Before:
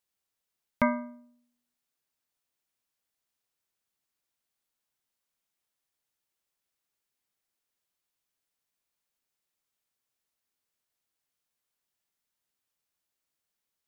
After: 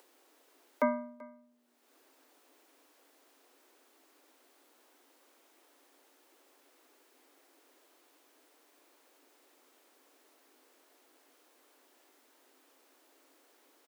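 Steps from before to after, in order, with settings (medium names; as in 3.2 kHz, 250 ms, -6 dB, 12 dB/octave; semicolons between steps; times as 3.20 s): tilt shelf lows +6 dB, about 650 Hz; upward compressor, threshold -37 dBFS; steep high-pass 260 Hz 96 dB/octave; treble shelf 2.6 kHz -8 dB; delay 385 ms -22.5 dB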